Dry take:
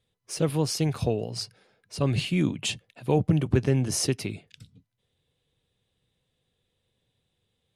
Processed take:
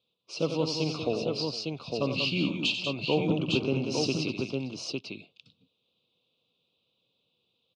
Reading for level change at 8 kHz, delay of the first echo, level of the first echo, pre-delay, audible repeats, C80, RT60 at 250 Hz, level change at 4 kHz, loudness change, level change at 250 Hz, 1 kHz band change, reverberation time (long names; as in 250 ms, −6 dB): −9.5 dB, 51 ms, −18.5 dB, no reverb audible, 5, no reverb audible, no reverb audible, +3.5 dB, −3.0 dB, −2.0 dB, −1.0 dB, no reverb audible